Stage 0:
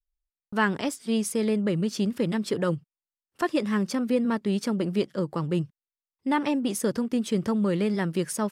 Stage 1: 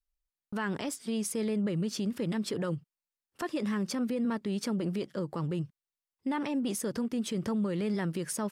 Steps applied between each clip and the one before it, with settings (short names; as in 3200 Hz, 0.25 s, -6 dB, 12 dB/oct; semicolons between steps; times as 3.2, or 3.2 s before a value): limiter -23 dBFS, peak gain reduction 10.5 dB; gain -1.5 dB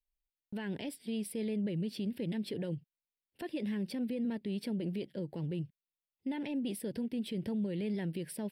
fixed phaser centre 2900 Hz, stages 4; gain -3.5 dB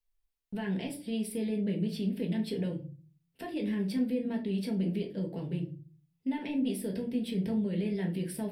shoebox room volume 200 m³, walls furnished, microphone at 1.6 m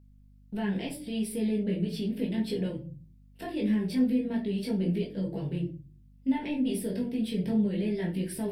chorus voices 4, 0.35 Hz, delay 19 ms, depth 4.7 ms; hum 50 Hz, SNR 26 dB; gain +5.5 dB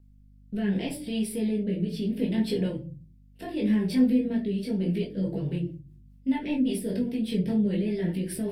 rotary speaker horn 0.7 Hz, later 5 Hz, at 4.6; gain +4 dB